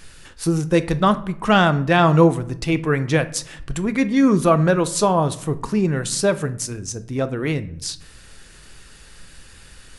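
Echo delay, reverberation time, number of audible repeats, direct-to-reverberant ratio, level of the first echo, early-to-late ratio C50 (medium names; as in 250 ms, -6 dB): no echo, 0.70 s, no echo, 11.5 dB, no echo, 16.5 dB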